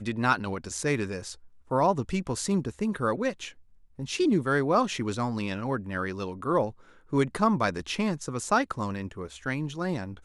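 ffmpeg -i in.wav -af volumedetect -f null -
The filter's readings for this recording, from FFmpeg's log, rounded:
mean_volume: -28.6 dB
max_volume: -9.6 dB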